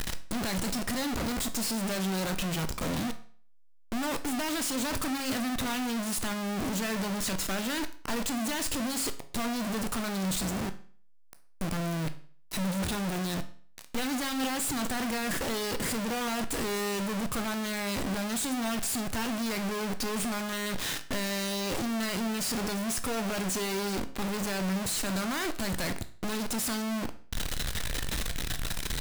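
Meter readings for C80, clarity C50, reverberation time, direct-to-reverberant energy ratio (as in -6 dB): 18.5 dB, 14.5 dB, 0.45 s, 9.5 dB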